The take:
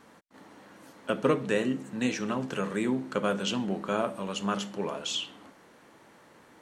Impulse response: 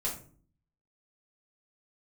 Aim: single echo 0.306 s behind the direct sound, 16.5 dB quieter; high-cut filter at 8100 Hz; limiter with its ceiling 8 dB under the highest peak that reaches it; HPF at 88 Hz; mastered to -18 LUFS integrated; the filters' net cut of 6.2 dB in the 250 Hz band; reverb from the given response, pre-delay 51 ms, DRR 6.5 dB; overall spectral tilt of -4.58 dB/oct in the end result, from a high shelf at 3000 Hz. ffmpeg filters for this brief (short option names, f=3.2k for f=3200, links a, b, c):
-filter_complex "[0:a]highpass=88,lowpass=8.1k,equalizer=f=250:t=o:g=-7.5,highshelf=f=3k:g=-5,alimiter=limit=-22.5dB:level=0:latency=1,aecho=1:1:306:0.15,asplit=2[a][b];[1:a]atrim=start_sample=2205,adelay=51[c];[b][c]afir=irnorm=-1:irlink=0,volume=-10.5dB[d];[a][d]amix=inputs=2:normalize=0,volume=16.5dB"